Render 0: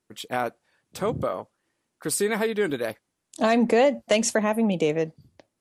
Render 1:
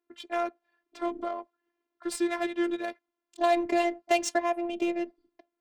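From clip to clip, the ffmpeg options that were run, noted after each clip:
-af "highpass=f=200:w=0.5412,highpass=f=200:w=1.3066,adynamicsmooth=sensitivity=3.5:basefreq=2600,afftfilt=real='hypot(re,im)*cos(PI*b)':imag='0':win_size=512:overlap=0.75"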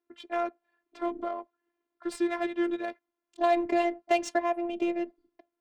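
-af "highshelf=f=4500:g=-10.5"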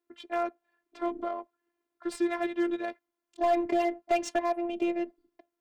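-af "aeval=exprs='clip(val(0),-1,0.112)':c=same"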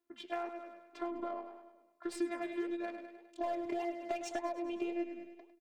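-filter_complex "[0:a]asplit=2[s0][s1];[s1]aecho=0:1:102|204|306|408|510|612:0.251|0.133|0.0706|0.0374|0.0198|0.0105[s2];[s0][s2]amix=inputs=2:normalize=0,acompressor=threshold=0.0224:ratio=6,flanger=delay=2.9:depth=8.2:regen=83:speed=1.8:shape=sinusoidal,volume=1.41"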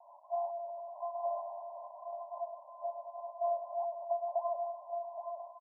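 -filter_complex "[0:a]aeval=exprs='val(0)+0.5*0.00944*sgn(val(0))':c=same,asuperpass=centerf=770:order=20:qfactor=1.6,asplit=2[s0][s1];[s1]aecho=0:1:820:0.447[s2];[s0][s2]amix=inputs=2:normalize=0,volume=1.33"

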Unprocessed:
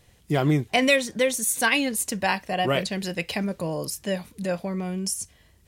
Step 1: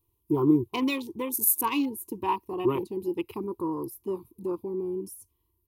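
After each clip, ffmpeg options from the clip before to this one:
-af "afwtdn=0.0316,firequalizer=gain_entry='entry(110,0);entry(170,-15);entry(350,10);entry(620,-27);entry(980,7);entry(1600,-26);entry(2500,-10);entry(5200,-11);entry(7600,-10);entry(12000,12)':delay=0.05:min_phase=1"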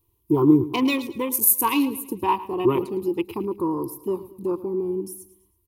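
-af "aecho=1:1:109|218|327|436:0.158|0.0666|0.028|0.0117,volume=1.88"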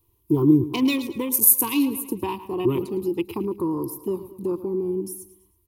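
-filter_complex "[0:a]acrossover=split=340|3000[s0][s1][s2];[s1]acompressor=threshold=0.0224:ratio=6[s3];[s0][s3][s2]amix=inputs=3:normalize=0,volume=1.33"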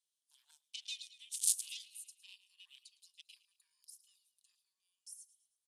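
-af "aeval=exprs='0.891*(cos(1*acos(clip(val(0)/0.891,-1,1)))-cos(1*PI/2))+0.2*(cos(3*acos(clip(val(0)/0.891,-1,1)))-cos(3*PI/2))+0.1*(cos(7*acos(clip(val(0)/0.891,-1,1)))-cos(7*PI/2))':c=same,asuperpass=centerf=5500:order=8:qfactor=0.92"

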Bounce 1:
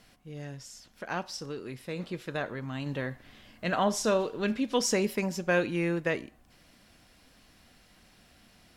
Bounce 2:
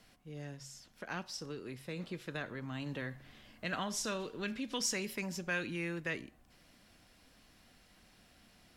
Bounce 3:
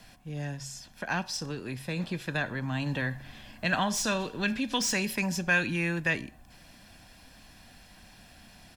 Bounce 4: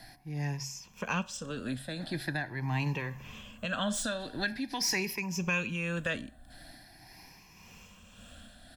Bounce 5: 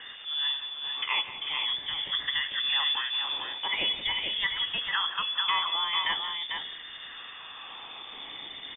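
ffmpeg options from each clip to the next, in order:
-filter_complex "[0:a]bandreject=f=68.45:t=h:w=4,bandreject=f=136.9:t=h:w=4,acrossover=split=360|1200[s0][s1][s2];[s0]alimiter=level_in=2.51:limit=0.0631:level=0:latency=1,volume=0.398[s3];[s1]acompressor=threshold=0.00708:ratio=6[s4];[s3][s4][s2]amix=inputs=3:normalize=0,volume=0.631"
-filter_complex "[0:a]aecho=1:1:1.2:0.43,acrossover=split=420|3900[s0][s1][s2];[s2]asoftclip=type=hard:threshold=0.0126[s3];[s0][s1][s3]amix=inputs=3:normalize=0,volume=2.82"
-af "afftfilt=real='re*pow(10,13/40*sin(2*PI*(0.78*log(max(b,1)*sr/1024/100)/log(2)-(0.44)*(pts-256)/sr)))':imag='im*pow(10,13/40*sin(2*PI*(0.78*log(max(b,1)*sr/1024/100)/log(2)-(0.44)*(pts-256)/sr)))':win_size=1024:overlap=0.75,alimiter=limit=0.1:level=0:latency=1:release=409,tremolo=f=1.8:d=0.41"
-af "aeval=exprs='val(0)+0.5*0.00794*sgn(val(0))':c=same,aecho=1:1:178|446:0.211|0.531,lowpass=f=3100:t=q:w=0.5098,lowpass=f=3100:t=q:w=0.6013,lowpass=f=3100:t=q:w=0.9,lowpass=f=3100:t=q:w=2.563,afreqshift=-3600,volume=1.33"

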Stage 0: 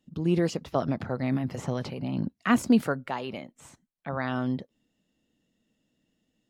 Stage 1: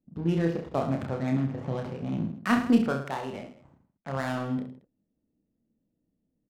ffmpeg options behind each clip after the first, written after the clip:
-filter_complex "[0:a]adynamicsmooth=sensitivity=7.5:basefreq=570,asplit=2[s0][s1];[s1]aecho=0:1:30|66|109.2|161|223.2:0.631|0.398|0.251|0.158|0.1[s2];[s0][s2]amix=inputs=2:normalize=0,volume=0.75"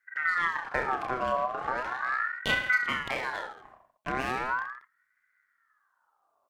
-af "acompressor=threshold=0.0178:ratio=2,aeval=exprs='val(0)*sin(2*PI*1300*n/s+1300*0.35/0.38*sin(2*PI*0.38*n/s))':c=same,volume=2.37"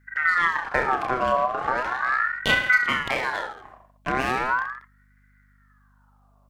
-af "aeval=exprs='val(0)+0.000562*(sin(2*PI*50*n/s)+sin(2*PI*2*50*n/s)/2+sin(2*PI*3*50*n/s)/3+sin(2*PI*4*50*n/s)/4+sin(2*PI*5*50*n/s)/5)':c=same,volume=2.11"

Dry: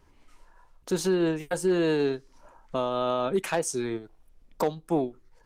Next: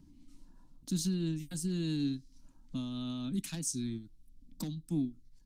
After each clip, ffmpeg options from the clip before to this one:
-filter_complex "[0:a]firequalizer=gain_entry='entry(280,0);entry(410,-30);entry(3900,-3)':delay=0.05:min_phase=1,acrossover=split=200|920|2200[s0][s1][s2][s3];[s1]acompressor=mode=upward:threshold=0.00282:ratio=2.5[s4];[s0][s4][s2][s3]amix=inputs=4:normalize=0"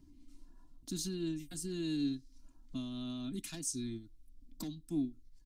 -af "aecho=1:1:2.9:0.52,volume=0.708"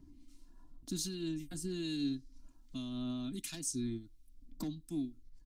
-filter_complex "[0:a]acrossover=split=1800[s0][s1];[s0]aeval=exprs='val(0)*(1-0.5/2+0.5/2*cos(2*PI*1.3*n/s))':c=same[s2];[s1]aeval=exprs='val(0)*(1-0.5/2-0.5/2*cos(2*PI*1.3*n/s))':c=same[s3];[s2][s3]amix=inputs=2:normalize=0,volume=1.41"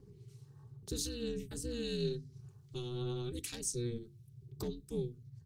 -af "aeval=exprs='val(0)*sin(2*PI*120*n/s)':c=same,bandreject=f=50:t=h:w=6,bandreject=f=100:t=h:w=6,bandreject=f=150:t=h:w=6,bandreject=f=200:t=h:w=6,bandreject=f=250:t=h:w=6,bandreject=f=300:t=h:w=6,bandreject=f=350:t=h:w=6,volume=1.5"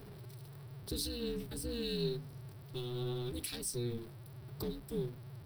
-af "aeval=exprs='val(0)+0.5*0.00398*sgn(val(0))':c=same,aexciter=amount=1.1:drive=2.5:freq=3700,volume=0.891"

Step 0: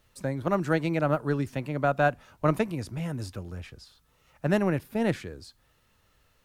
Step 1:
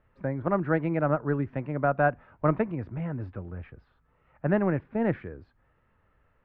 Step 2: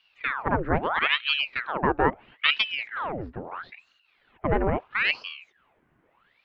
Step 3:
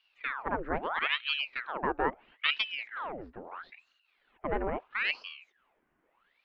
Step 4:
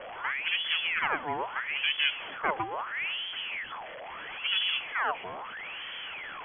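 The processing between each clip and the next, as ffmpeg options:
-af "lowpass=f=2000:w=0.5412,lowpass=f=2000:w=1.3066"
-af "aeval=exprs='val(0)*sin(2*PI*1500*n/s+1500*0.9/0.76*sin(2*PI*0.76*n/s))':c=same,volume=1.58"
-af "equalizer=f=110:w=1.1:g=-13,volume=0.473"
-af "aeval=exprs='val(0)+0.5*0.0224*sgn(val(0))':c=same,lowpass=f=2900:t=q:w=0.5098,lowpass=f=2900:t=q:w=0.6013,lowpass=f=2900:t=q:w=0.9,lowpass=f=2900:t=q:w=2.563,afreqshift=-3400,bandreject=f=60:t=h:w=6,bandreject=f=120:t=h:w=6"

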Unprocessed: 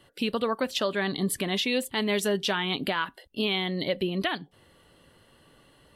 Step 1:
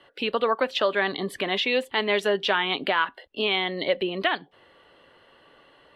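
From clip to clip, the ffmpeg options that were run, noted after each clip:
-filter_complex "[0:a]acrossover=split=350 3800:gain=0.178 1 0.0891[s0][s1][s2];[s0][s1][s2]amix=inputs=3:normalize=0,volume=2"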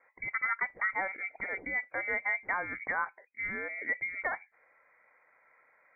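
-af "lowpass=f=2100:t=q:w=0.5098,lowpass=f=2100:t=q:w=0.6013,lowpass=f=2100:t=q:w=0.9,lowpass=f=2100:t=q:w=2.563,afreqshift=-2500,volume=0.376"

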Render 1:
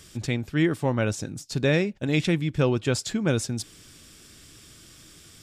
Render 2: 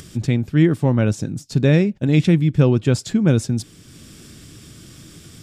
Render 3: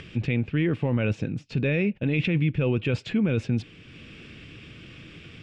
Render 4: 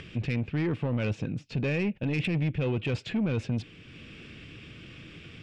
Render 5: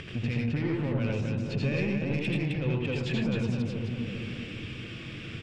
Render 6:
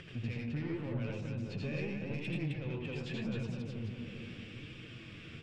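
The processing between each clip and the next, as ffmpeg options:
-af "equalizer=f=160:w=0.49:g=10.5,acompressor=mode=upward:threshold=0.0178:ratio=2.5"
-af "equalizer=f=480:w=4.8:g=6,alimiter=limit=0.224:level=0:latency=1:release=18,lowpass=f=2600:t=q:w=4.5,volume=0.668"
-af "asoftclip=type=tanh:threshold=0.0944,volume=0.841"
-filter_complex "[0:a]asplit=2[s0][s1];[s1]adelay=393,lowpass=f=950:p=1,volume=0.316,asplit=2[s2][s3];[s3]adelay=393,lowpass=f=950:p=1,volume=0.49,asplit=2[s4][s5];[s5]adelay=393,lowpass=f=950:p=1,volume=0.49,asplit=2[s6][s7];[s7]adelay=393,lowpass=f=950:p=1,volume=0.49,asplit=2[s8][s9];[s9]adelay=393,lowpass=f=950:p=1,volume=0.49[s10];[s2][s4][s6][s8][s10]amix=inputs=5:normalize=0[s11];[s0][s11]amix=inputs=2:normalize=0,acompressor=threshold=0.0224:ratio=4,asplit=2[s12][s13];[s13]aecho=0:1:80|89|110|262:0.631|0.668|0.447|0.631[s14];[s12][s14]amix=inputs=2:normalize=0,volume=1.33"
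-af "flanger=delay=5.4:depth=8.2:regen=49:speed=0.84:shape=triangular,volume=0.562"

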